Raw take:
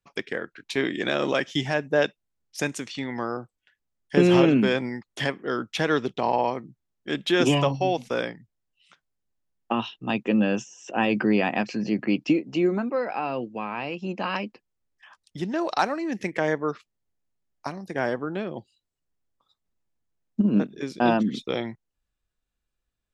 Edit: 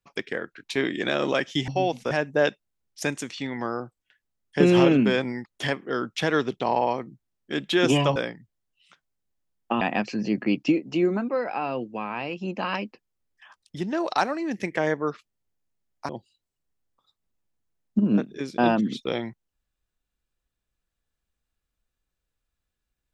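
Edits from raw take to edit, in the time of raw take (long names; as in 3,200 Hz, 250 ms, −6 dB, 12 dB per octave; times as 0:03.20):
0:07.73–0:08.16: move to 0:01.68
0:09.81–0:11.42: remove
0:17.70–0:18.51: remove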